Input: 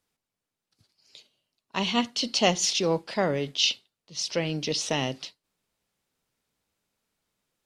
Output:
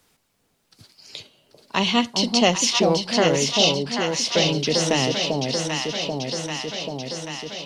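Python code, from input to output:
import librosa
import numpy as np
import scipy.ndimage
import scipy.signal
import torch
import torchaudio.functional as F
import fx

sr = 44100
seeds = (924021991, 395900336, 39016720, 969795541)

p1 = x + fx.echo_alternate(x, sr, ms=393, hz=820.0, feedback_pct=76, wet_db=-3, dry=0)
p2 = fx.band_squash(p1, sr, depth_pct=40)
y = F.gain(torch.from_numpy(p2), 5.5).numpy()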